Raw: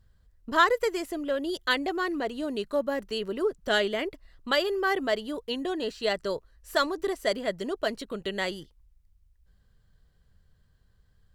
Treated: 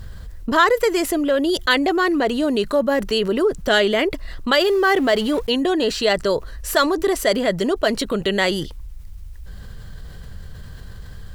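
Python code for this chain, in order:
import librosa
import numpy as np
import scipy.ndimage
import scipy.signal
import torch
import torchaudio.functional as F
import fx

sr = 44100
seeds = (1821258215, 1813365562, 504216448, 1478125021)

y = fx.law_mismatch(x, sr, coded='mu', at=(4.61, 5.47))
y = fx.env_flatten(y, sr, amount_pct=50)
y = y * librosa.db_to_amplitude(5.0)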